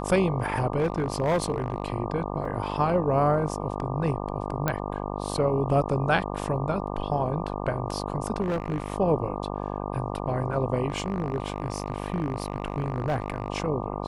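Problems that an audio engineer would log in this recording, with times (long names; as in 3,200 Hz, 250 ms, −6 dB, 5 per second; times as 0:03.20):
mains buzz 50 Hz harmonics 24 −32 dBFS
0:00.79–0:01.94: clipping −19.5 dBFS
0:02.45: drop-out 3.7 ms
0:04.68: click −10 dBFS
0:08.41–0:08.92: clipping −23 dBFS
0:10.88–0:13.50: clipping −21 dBFS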